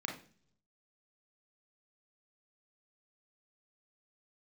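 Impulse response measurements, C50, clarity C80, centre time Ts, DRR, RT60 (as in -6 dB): 7.5 dB, 13.5 dB, 24 ms, 0.5 dB, 0.45 s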